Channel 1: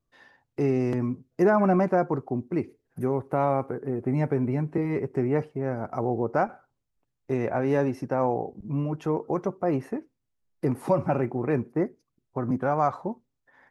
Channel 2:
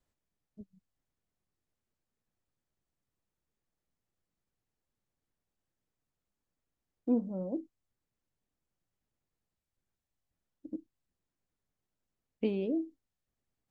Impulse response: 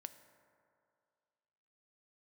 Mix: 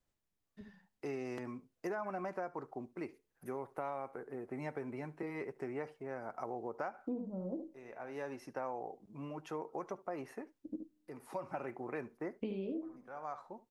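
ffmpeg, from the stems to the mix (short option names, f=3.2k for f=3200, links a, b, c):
-filter_complex "[0:a]highpass=f=920:p=1,adelay=450,volume=-5dB,asplit=2[a][b];[b]volume=-23dB[c];[1:a]flanger=delay=9.1:depth=2.6:regen=-73:speed=0.74:shape=sinusoidal,volume=1.5dB,asplit=4[d][e][f][g];[e]volume=-15dB[h];[f]volume=-6.5dB[i];[g]apad=whole_len=624275[j];[a][j]sidechaincompress=threshold=-54dB:ratio=4:attack=9.6:release=670[k];[2:a]atrim=start_sample=2205[l];[h][l]afir=irnorm=-1:irlink=0[m];[c][i]amix=inputs=2:normalize=0,aecho=0:1:72:1[n];[k][d][m][n]amix=inputs=4:normalize=0,acompressor=threshold=-36dB:ratio=6"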